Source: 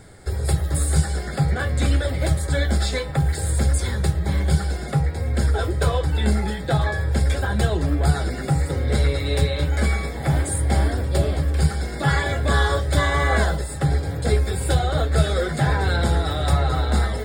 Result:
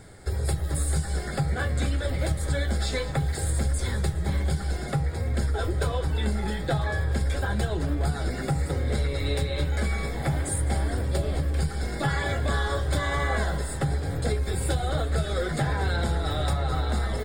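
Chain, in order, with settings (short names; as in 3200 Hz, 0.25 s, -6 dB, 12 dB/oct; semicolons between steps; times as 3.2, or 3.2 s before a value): compressor, threshold -20 dBFS, peak gain reduction 8.5 dB; on a send: frequency-shifting echo 0.206 s, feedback 61%, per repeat -66 Hz, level -15 dB; on the sum: gain -2 dB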